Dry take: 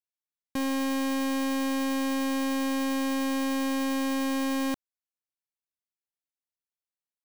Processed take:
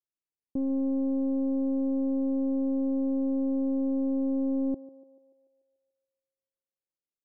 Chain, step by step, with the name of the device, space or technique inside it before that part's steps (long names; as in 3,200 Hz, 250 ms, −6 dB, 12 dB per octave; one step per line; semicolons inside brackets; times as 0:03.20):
under water (low-pass filter 540 Hz 24 dB per octave; parametric band 350 Hz +4 dB 0.43 octaves)
feedback echo with a band-pass in the loop 145 ms, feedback 61%, band-pass 570 Hz, level −17 dB